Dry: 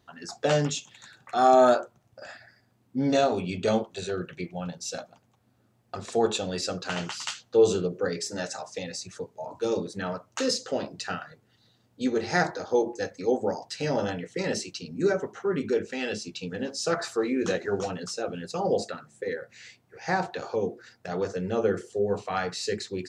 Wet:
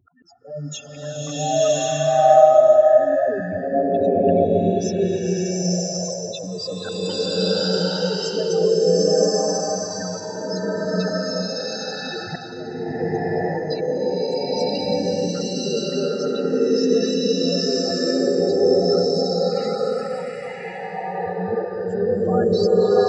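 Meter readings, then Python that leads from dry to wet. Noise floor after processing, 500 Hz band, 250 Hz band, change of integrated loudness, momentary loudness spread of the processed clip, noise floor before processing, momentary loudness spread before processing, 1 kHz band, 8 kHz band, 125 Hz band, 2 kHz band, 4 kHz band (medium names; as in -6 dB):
-33 dBFS, +9.5 dB, +7.5 dB, +8.0 dB, 12 LU, -66 dBFS, 13 LU, +5.5 dB, +7.5 dB, +8.5 dB, +0.5 dB, +9.0 dB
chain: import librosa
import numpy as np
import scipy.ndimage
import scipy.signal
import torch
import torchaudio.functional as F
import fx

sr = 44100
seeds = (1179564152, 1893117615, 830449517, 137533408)

y = fx.spec_expand(x, sr, power=4.0)
y = fx.auto_swell(y, sr, attack_ms=393.0)
y = fx.rev_bloom(y, sr, seeds[0], attack_ms=1120, drr_db=-12.0)
y = y * 10.0 ** (2.5 / 20.0)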